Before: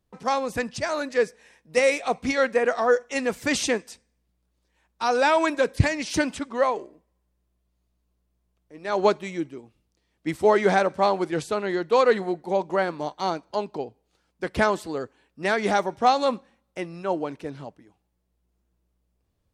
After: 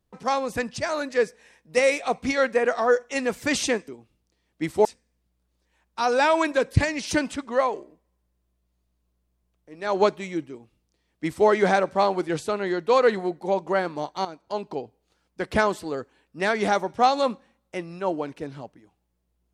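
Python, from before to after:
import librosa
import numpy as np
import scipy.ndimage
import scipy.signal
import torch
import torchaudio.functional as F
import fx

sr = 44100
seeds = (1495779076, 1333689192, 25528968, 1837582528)

y = fx.edit(x, sr, fx.duplicate(start_s=9.53, length_s=0.97, to_s=3.88),
    fx.fade_in_from(start_s=13.28, length_s=0.42, floor_db=-13.5), tone=tone)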